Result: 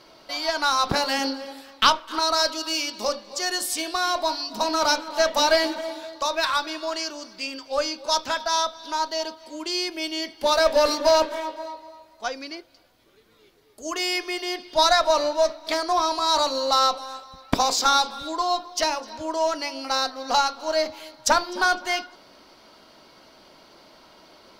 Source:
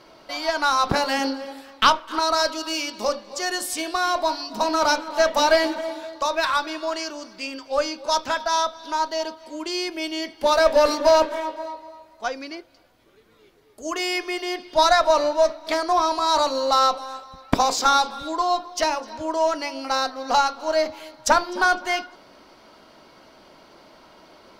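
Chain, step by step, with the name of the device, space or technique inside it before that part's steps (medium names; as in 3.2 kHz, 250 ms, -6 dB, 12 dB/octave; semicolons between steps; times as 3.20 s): presence and air boost (peaking EQ 4.3 kHz +4.5 dB 1.2 oct; treble shelf 10 kHz +6.5 dB); trim -2.5 dB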